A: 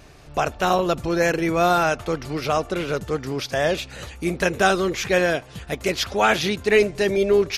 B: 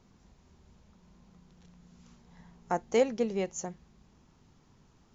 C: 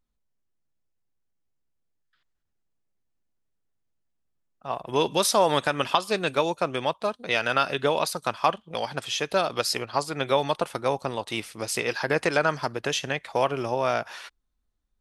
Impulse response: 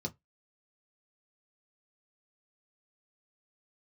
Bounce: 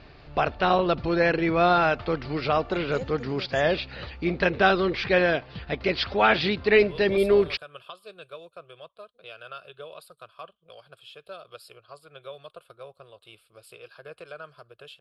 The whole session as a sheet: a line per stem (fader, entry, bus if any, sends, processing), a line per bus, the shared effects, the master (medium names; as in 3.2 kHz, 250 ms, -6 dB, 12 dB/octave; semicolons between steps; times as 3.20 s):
-1.0 dB, 0.00 s, no send, elliptic low-pass 4.7 kHz, stop band 40 dB
-12.0 dB, 0.00 s, no send, none
-16.5 dB, 1.95 s, no send, static phaser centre 1.3 kHz, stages 8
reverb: none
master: none